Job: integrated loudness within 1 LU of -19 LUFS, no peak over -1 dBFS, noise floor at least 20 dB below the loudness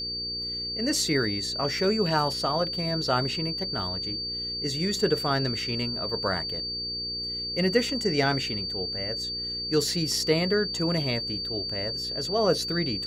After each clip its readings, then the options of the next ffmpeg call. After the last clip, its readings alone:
hum 60 Hz; harmonics up to 480 Hz; hum level -42 dBFS; steady tone 4600 Hz; tone level -30 dBFS; loudness -26.5 LUFS; peak -8.5 dBFS; loudness target -19.0 LUFS
-> -af "bandreject=f=60:t=h:w=4,bandreject=f=120:t=h:w=4,bandreject=f=180:t=h:w=4,bandreject=f=240:t=h:w=4,bandreject=f=300:t=h:w=4,bandreject=f=360:t=h:w=4,bandreject=f=420:t=h:w=4,bandreject=f=480:t=h:w=4"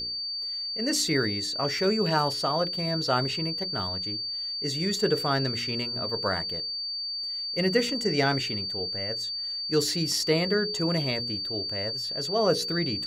hum none; steady tone 4600 Hz; tone level -30 dBFS
-> -af "bandreject=f=4.6k:w=30"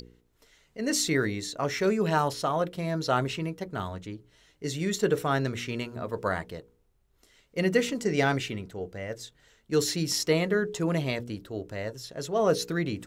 steady tone none; loudness -29.0 LUFS; peak -10.0 dBFS; loudness target -19.0 LUFS
-> -af "volume=10dB,alimiter=limit=-1dB:level=0:latency=1"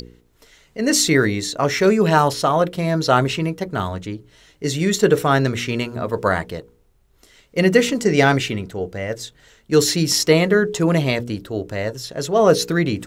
loudness -19.0 LUFS; peak -1.0 dBFS; noise floor -58 dBFS

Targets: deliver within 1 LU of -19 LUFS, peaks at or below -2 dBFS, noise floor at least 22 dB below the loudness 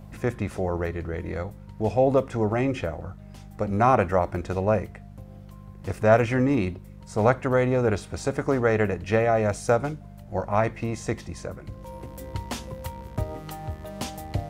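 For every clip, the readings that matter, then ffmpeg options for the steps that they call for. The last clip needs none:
hum 50 Hz; harmonics up to 200 Hz; hum level -43 dBFS; loudness -25.5 LUFS; peak -6.0 dBFS; loudness target -19.0 LUFS
-> -af "bandreject=f=50:t=h:w=4,bandreject=f=100:t=h:w=4,bandreject=f=150:t=h:w=4,bandreject=f=200:t=h:w=4"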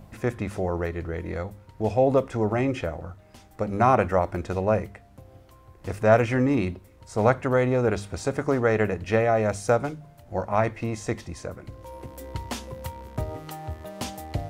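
hum none; loudness -25.5 LUFS; peak -5.5 dBFS; loudness target -19.0 LUFS
-> -af "volume=6.5dB,alimiter=limit=-2dB:level=0:latency=1"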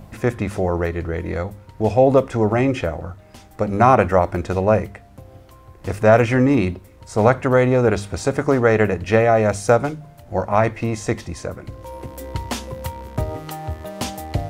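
loudness -19.0 LUFS; peak -2.0 dBFS; noise floor -46 dBFS

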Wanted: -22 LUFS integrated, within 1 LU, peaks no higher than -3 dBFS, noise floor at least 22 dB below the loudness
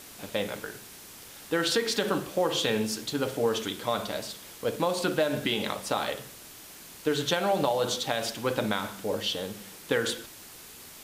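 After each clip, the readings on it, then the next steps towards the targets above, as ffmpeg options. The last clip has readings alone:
noise floor -47 dBFS; noise floor target -51 dBFS; loudness -29.0 LUFS; peak -11.5 dBFS; loudness target -22.0 LUFS
-> -af "afftdn=nr=6:nf=-47"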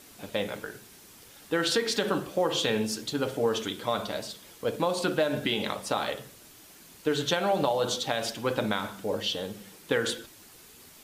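noise floor -52 dBFS; loudness -29.0 LUFS; peak -11.5 dBFS; loudness target -22.0 LUFS
-> -af "volume=7dB"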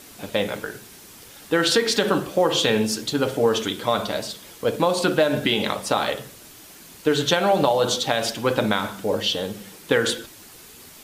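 loudness -22.0 LUFS; peak -4.5 dBFS; noise floor -45 dBFS

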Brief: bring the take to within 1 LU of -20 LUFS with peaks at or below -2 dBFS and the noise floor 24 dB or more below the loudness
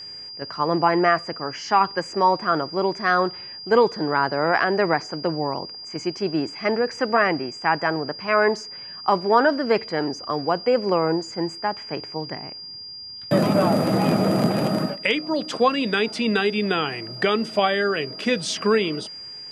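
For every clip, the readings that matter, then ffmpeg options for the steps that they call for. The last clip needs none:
steady tone 4800 Hz; tone level -35 dBFS; loudness -22.0 LUFS; peak -4.5 dBFS; loudness target -20.0 LUFS
-> -af "bandreject=f=4.8k:w=30"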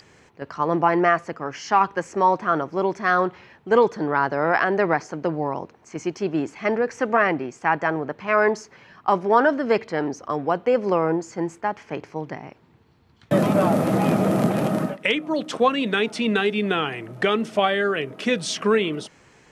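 steady tone none; loudness -22.5 LUFS; peak -5.0 dBFS; loudness target -20.0 LUFS
-> -af "volume=2.5dB"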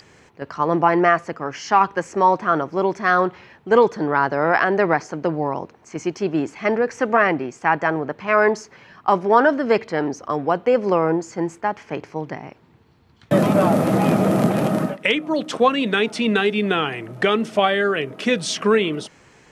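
loudness -20.0 LUFS; peak -2.5 dBFS; noise floor -53 dBFS

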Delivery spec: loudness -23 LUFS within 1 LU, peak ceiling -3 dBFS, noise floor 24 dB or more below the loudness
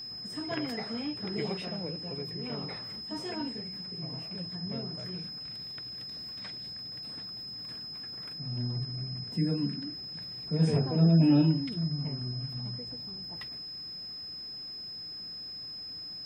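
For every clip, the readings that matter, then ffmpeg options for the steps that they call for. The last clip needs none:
steady tone 5100 Hz; tone level -39 dBFS; loudness -33.0 LUFS; peak -14.0 dBFS; loudness target -23.0 LUFS
-> -af "bandreject=f=5.1k:w=30"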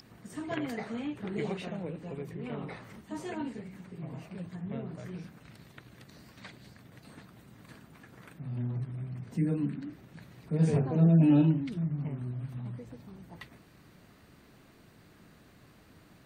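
steady tone none; loudness -32.0 LUFS; peak -14.5 dBFS; loudness target -23.0 LUFS
-> -af "volume=9dB"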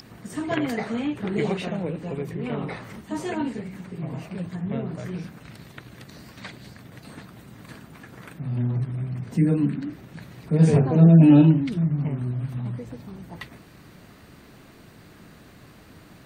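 loudness -23.0 LUFS; peak -5.5 dBFS; noise floor -50 dBFS

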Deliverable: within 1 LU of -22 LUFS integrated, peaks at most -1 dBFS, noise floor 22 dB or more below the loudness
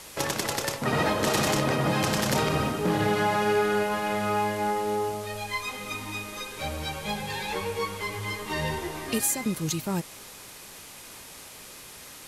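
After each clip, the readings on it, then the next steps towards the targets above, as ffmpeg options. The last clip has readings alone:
noise floor -45 dBFS; noise floor target -50 dBFS; loudness -27.5 LUFS; peak -12.0 dBFS; loudness target -22.0 LUFS
-> -af "afftdn=nr=6:nf=-45"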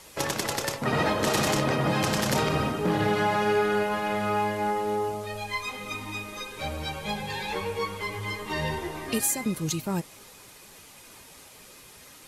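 noise floor -50 dBFS; loudness -27.5 LUFS; peak -12.5 dBFS; loudness target -22.0 LUFS
-> -af "volume=5.5dB"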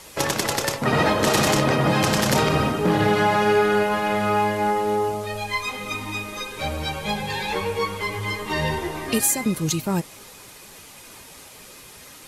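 loudness -22.0 LUFS; peak -7.0 dBFS; noise floor -45 dBFS

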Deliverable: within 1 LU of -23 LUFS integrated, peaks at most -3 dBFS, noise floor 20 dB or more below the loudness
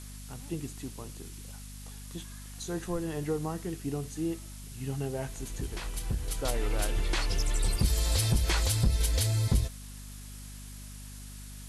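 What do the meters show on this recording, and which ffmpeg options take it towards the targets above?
hum 50 Hz; harmonics up to 250 Hz; hum level -43 dBFS; noise floor -44 dBFS; noise floor target -52 dBFS; loudness -32.0 LUFS; peak -15.5 dBFS; loudness target -23.0 LUFS
-> -af "bandreject=f=50:t=h:w=6,bandreject=f=100:t=h:w=6,bandreject=f=150:t=h:w=6,bandreject=f=200:t=h:w=6,bandreject=f=250:t=h:w=6"
-af "afftdn=nr=8:nf=-44"
-af "volume=9dB"

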